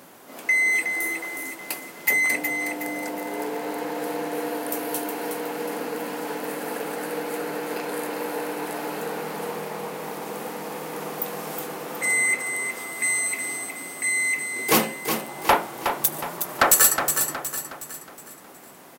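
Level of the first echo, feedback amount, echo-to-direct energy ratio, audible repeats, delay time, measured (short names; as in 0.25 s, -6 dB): -7.0 dB, 43%, -6.0 dB, 4, 0.366 s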